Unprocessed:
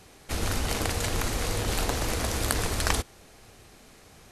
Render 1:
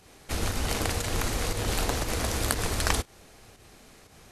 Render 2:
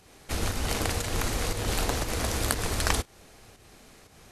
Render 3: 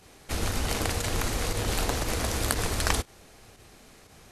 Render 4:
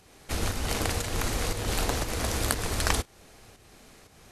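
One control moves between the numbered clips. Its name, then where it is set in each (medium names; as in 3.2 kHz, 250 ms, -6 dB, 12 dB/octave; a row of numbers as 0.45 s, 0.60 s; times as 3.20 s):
volume shaper, release: 136 ms, 211 ms, 69 ms, 315 ms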